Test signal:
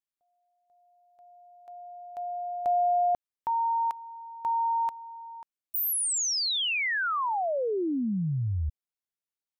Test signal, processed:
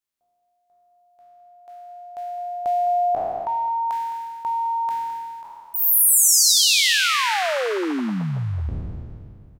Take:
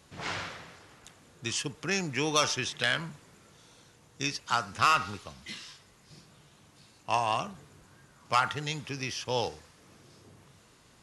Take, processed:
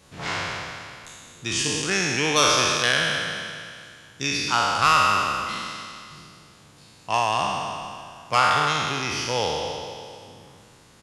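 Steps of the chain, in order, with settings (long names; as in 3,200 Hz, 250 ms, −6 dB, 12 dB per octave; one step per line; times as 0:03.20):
peak hold with a decay on every bin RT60 2.27 s
single-tap delay 212 ms −14 dB
level +3 dB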